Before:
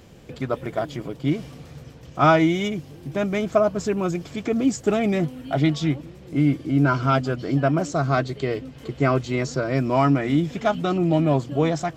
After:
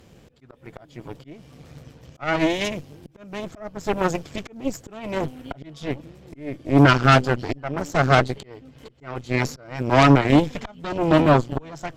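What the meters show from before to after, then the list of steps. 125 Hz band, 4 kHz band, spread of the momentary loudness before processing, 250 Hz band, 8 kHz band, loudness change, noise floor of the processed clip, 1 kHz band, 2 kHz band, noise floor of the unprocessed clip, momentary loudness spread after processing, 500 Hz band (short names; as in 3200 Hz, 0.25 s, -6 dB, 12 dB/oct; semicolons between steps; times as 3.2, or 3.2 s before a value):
0.0 dB, +4.5 dB, 11 LU, -1.0 dB, -0.5 dB, +2.0 dB, -52 dBFS, +2.0 dB, +4.0 dB, -44 dBFS, 20 LU, -1.0 dB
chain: auto swell 0.459 s; added harmonics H 5 -30 dB, 6 -13 dB, 7 -20 dB, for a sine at -7 dBFS; gain +4 dB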